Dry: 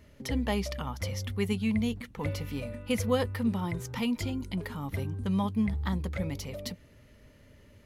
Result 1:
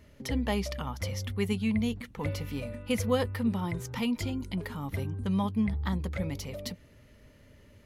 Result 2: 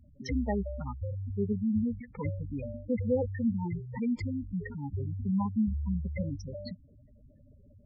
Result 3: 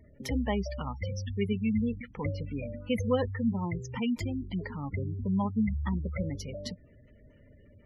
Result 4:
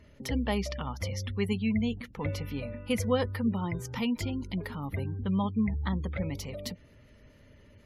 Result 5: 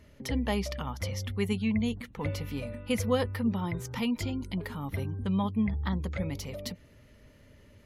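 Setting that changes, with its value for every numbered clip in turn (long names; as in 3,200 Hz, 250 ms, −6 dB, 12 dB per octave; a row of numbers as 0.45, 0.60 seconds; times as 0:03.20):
gate on every frequency bin, under each frame's peak: −60, −10, −20, −35, −45 decibels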